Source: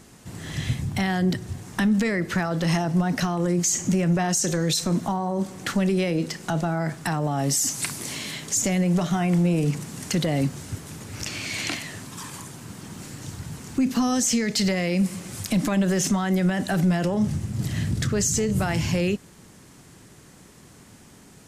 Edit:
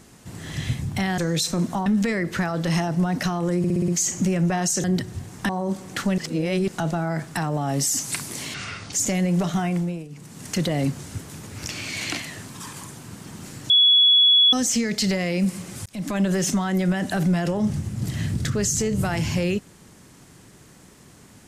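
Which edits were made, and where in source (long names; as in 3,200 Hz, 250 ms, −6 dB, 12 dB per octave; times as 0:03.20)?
0:01.18–0:01.83: swap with 0:04.51–0:05.19
0:03.55: stutter 0.06 s, 6 plays
0:05.88–0:06.38: reverse
0:08.24–0:08.50: play speed 67%
0:09.17–0:10.15: duck −20.5 dB, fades 0.49 s
0:13.27–0:14.10: beep over 3,380 Hz −12 dBFS
0:15.43–0:15.78: fade in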